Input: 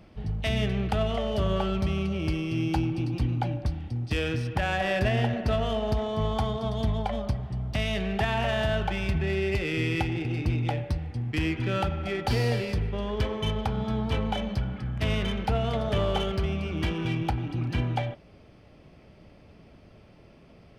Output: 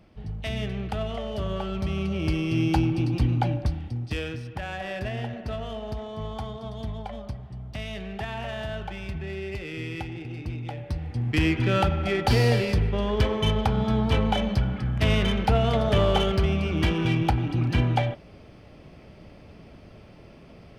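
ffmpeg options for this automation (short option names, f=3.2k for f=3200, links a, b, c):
-af "volume=15.5dB,afade=t=in:st=1.67:d=0.86:silence=0.421697,afade=t=out:st=3.49:d=0.91:silence=0.298538,afade=t=in:st=10.76:d=0.57:silence=0.266073"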